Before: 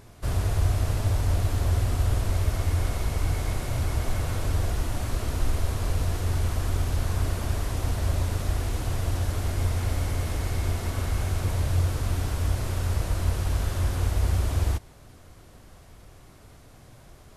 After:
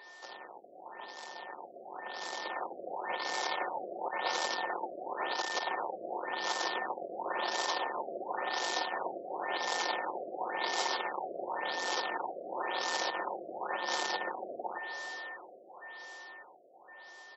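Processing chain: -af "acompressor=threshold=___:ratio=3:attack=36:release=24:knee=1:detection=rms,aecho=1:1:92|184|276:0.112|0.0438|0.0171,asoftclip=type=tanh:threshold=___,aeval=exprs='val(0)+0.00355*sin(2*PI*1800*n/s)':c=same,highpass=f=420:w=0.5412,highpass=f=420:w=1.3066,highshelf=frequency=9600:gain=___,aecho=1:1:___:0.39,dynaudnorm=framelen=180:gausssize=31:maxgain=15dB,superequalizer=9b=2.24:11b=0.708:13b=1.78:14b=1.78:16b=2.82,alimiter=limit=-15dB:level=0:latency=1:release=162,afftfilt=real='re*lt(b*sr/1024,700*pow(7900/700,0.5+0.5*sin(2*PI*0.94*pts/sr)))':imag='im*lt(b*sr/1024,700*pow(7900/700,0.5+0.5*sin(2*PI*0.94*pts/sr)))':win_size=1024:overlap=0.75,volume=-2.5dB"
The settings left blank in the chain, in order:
-33dB, -32.5dB, 9, 5.6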